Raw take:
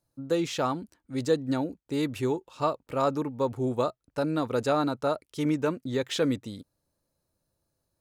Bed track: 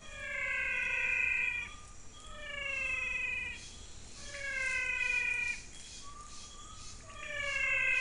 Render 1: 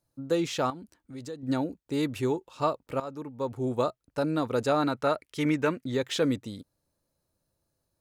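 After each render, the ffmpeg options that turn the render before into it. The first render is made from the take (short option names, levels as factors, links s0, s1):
-filter_complex "[0:a]asettb=1/sr,asplit=3[s0][s1][s2];[s0]atrim=end=0.704[s3];[s1]atrim=start=0.7:end=1.43,asetpts=PTS-STARTPTS,afade=t=in:d=0.004:c=qsin,afade=t=out:st=0.726:d=0.004:c=qsin,acompressor=threshold=0.00794:ratio=2.5:attack=3.2:release=140:knee=1:detection=peak[s4];[s2]atrim=start=1.426[s5];[s3][s4]acrossfade=d=0.004:c1=hsin:c2=qsin[s6];[s6][s5]acrossfade=d=0.004:c1=qsin:c2=hsin,asettb=1/sr,asplit=3[s7][s8][s9];[s7]atrim=end=4.824[s10];[s8]atrim=start=4.82:end=5.92,asetpts=PTS-STARTPTS,afade=t=in:d=0.004:c=qsin,afade=t=out:st=1.096:d=0.004:c=qsin,equalizer=f=2000:w=1.3:g=8.5[s11];[s9]atrim=start=5.916[s12];[s10][s11]acrossfade=d=0.004:c1=hsin:c2=qsin[s13];[s13][s12]acrossfade=d=0.004:c1=qsin:c2=hsin,asplit=2[s14][s15];[s14]atrim=end=3,asetpts=PTS-STARTPTS,afade=t=out:st=2.996:d=0.004:c=hsin:silence=0.158489[s16];[s15]atrim=start=3,asetpts=PTS-STARTPTS,afade=t=in:d=0.8:silence=0.158489[s17];[s16][s17]concat=n=2:v=0:a=1"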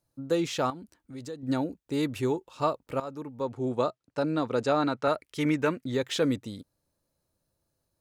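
-filter_complex "[0:a]asettb=1/sr,asplit=3[s0][s1][s2];[s0]atrim=end=3.404[s3];[s1]atrim=start=3.4:end=5.08,asetpts=PTS-STARTPTS,afade=t=in:d=0.004:c=qsin,afade=t=out:st=1.676:d=0.004:c=qsin,highpass=110,lowpass=7000[s4];[s2]atrim=start=5.076[s5];[s3][s4]acrossfade=d=0.004:c1=hsin:c2=qsin[s6];[s6][s5]acrossfade=d=0.004:c1=qsin:c2=hsin"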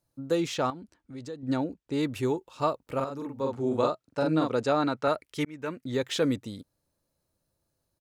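-filter_complex "[0:a]asettb=1/sr,asplit=3[s0][s1][s2];[s0]atrim=end=0.544[s3];[s1]atrim=start=0.54:end=2.07,asetpts=PTS-STARTPTS,afade=t=in:d=0.004:c=qsin,afade=t=out:st=1.526:d=0.004:c=qsin,adynamicsmooth=sensitivity=6:basefreq=7700[s4];[s2]atrim=start=2.066[s5];[s3][s4]acrossfade=d=0.004:c1=hsin:c2=qsin[s6];[s6][s5]acrossfade=d=0.004:c1=qsin:c2=hsin,asplit=3[s7][s8][s9];[s7]afade=t=out:st=2.98:d=0.02[s10];[s8]asplit=2[s11][s12];[s12]adelay=44,volume=0.794[s13];[s11][s13]amix=inputs=2:normalize=0,afade=t=in:st=2.98:d=0.02,afade=t=out:st=4.47:d=0.02[s14];[s9]afade=t=in:st=4.47:d=0.02[s15];[s10][s14][s15]amix=inputs=3:normalize=0,asplit=2[s16][s17];[s16]atrim=end=5.45,asetpts=PTS-STARTPTS,afade=t=out:st=5.446:d=0.004:c=hsin[s18];[s17]atrim=start=5.45,asetpts=PTS-STARTPTS,afade=t=in:d=0.53[s19];[s18][s19]concat=n=2:v=0:a=1"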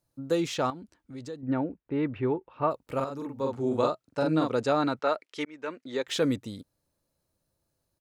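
-filter_complex "[0:a]asettb=1/sr,asplit=3[s0][s1][s2];[s0]atrim=end=1.414[s3];[s1]atrim=start=1.41:end=2.71,asetpts=PTS-STARTPTS,afade=t=in:d=0.004:c=qsin,afade=t=out:st=1.296:d=0.004:c=qsin,lowpass=f=2400:w=0.5412,lowpass=f=2400:w=1.3066[s4];[s2]atrim=start=2.706[s5];[s3][s4]acrossfade=d=0.004:c1=hsin:c2=qsin[s6];[s6][s5]acrossfade=d=0.004:c1=qsin:c2=hsin,asettb=1/sr,asplit=3[s7][s8][s9];[s7]atrim=end=4.994[s10];[s8]atrim=start=4.99:end=6.08,asetpts=PTS-STARTPTS,afade=t=in:d=0.004:c=qsin,afade=t=out:st=1.086:d=0.004:c=qsin,highpass=330,lowpass=6200[s11];[s9]atrim=start=6.076[s12];[s10][s11]acrossfade=d=0.004:c1=hsin:c2=qsin[s13];[s13][s12]acrossfade=d=0.004:c1=qsin:c2=hsin"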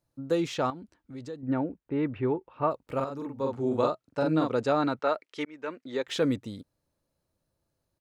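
-af "highshelf=f=4800:g=-6.5"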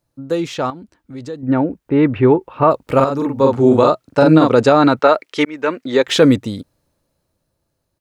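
-af "dynaudnorm=f=270:g=13:m=4.47,alimiter=level_in=2.24:limit=0.891:release=50:level=0:latency=1"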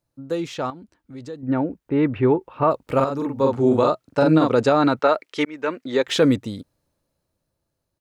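-af "volume=0.501"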